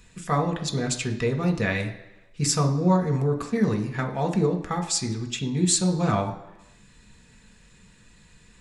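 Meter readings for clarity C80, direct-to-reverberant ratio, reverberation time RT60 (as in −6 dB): 13.5 dB, 2.0 dB, 1.0 s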